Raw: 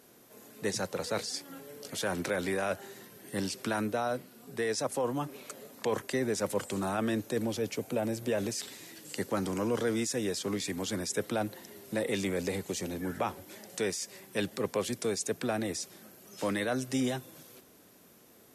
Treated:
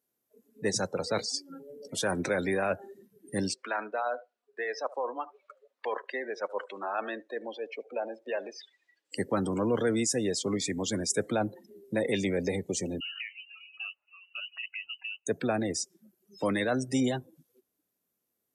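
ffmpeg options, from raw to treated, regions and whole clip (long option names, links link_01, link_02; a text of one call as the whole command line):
ffmpeg -i in.wav -filter_complex "[0:a]asettb=1/sr,asplit=3[link_01][link_02][link_03];[link_01]atrim=end=3.544[link_04];[link_02]atrim=start=3.54:end=9.12,asetpts=PTS-STARTPTS,afade=type=in:duration=0.004:curve=qsin,afade=type=out:start_time=5.576:duration=0.004:curve=qsin,highpass=630,lowpass=3600,aecho=1:1:75|150|225:0.188|0.0452|0.0108,atrim=end_sample=246078[link_05];[link_03]atrim=start=9.116[link_06];[link_04][link_05]acrossfade=duration=0.004:curve1=hsin:curve2=qsin[link_07];[link_07][link_06]acrossfade=duration=0.004:curve1=qsin:curve2=hsin,asettb=1/sr,asplit=3[link_08][link_09][link_10];[link_08]atrim=end=13.004[link_11];[link_09]atrim=start=13:end=15.27,asetpts=PTS-STARTPTS,afade=type=in:duration=0.004:curve=qsin,afade=type=out:start_time=2.266:duration=0.004:curve=qsin,adynamicequalizer=threshold=0.00562:dfrequency=980:dqfactor=0.72:tfrequency=980:tqfactor=0.72:attack=5:release=100:ratio=0.375:range=2.5:mode=boostabove:tftype=bell,acompressor=threshold=-38dB:ratio=6:attack=3.2:release=140:knee=1:detection=peak,lowpass=frequency=2600:width_type=q:width=0.5098,lowpass=frequency=2600:width_type=q:width=0.6013,lowpass=frequency=2600:width_type=q:width=0.9,lowpass=frequency=2600:width_type=q:width=2.563,afreqshift=-3100[link_12];[link_10]atrim=start=15.266[link_13];[link_11][link_12]acrossfade=duration=0.004:curve1=hsin:curve2=qsin[link_14];[link_14][link_13]acrossfade=duration=0.004:curve1=qsin:curve2=hsin,afftdn=noise_reduction=31:noise_floor=-40,highshelf=frequency=9300:gain=11.5,volume=3dB" out.wav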